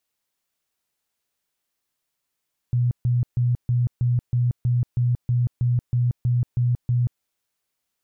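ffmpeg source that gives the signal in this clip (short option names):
-f lavfi -i "aevalsrc='0.141*sin(2*PI*122*mod(t,0.32))*lt(mod(t,0.32),22/122)':d=4.48:s=44100"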